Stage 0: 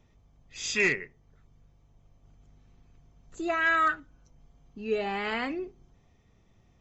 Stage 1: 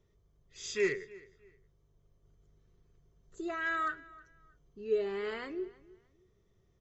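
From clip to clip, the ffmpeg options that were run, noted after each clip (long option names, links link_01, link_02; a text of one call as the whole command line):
ffmpeg -i in.wav -filter_complex "[0:a]equalizer=frequency=250:width_type=o:width=0.33:gain=-8,equalizer=frequency=400:width_type=o:width=0.33:gain=11,equalizer=frequency=800:width_type=o:width=0.33:gain=-10,equalizer=frequency=2500:width_type=o:width=0.33:gain=-8,asplit=2[link_01][link_02];[link_02]adelay=313,lowpass=frequency=4900:poles=1,volume=-21dB,asplit=2[link_03][link_04];[link_04]adelay=313,lowpass=frequency=4900:poles=1,volume=0.27[link_05];[link_01][link_03][link_05]amix=inputs=3:normalize=0,volume=-8dB" out.wav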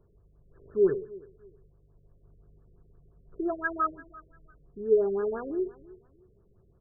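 ffmpeg -i in.wav -af "afftfilt=real='re*lt(b*sr/1024,570*pow(1800/570,0.5+0.5*sin(2*PI*5.8*pts/sr)))':imag='im*lt(b*sr/1024,570*pow(1800/570,0.5+0.5*sin(2*PI*5.8*pts/sr)))':win_size=1024:overlap=0.75,volume=8dB" out.wav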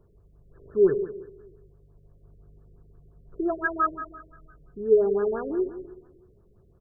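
ffmpeg -i in.wav -af "aecho=1:1:180|360|540:0.224|0.056|0.014,volume=3.5dB" out.wav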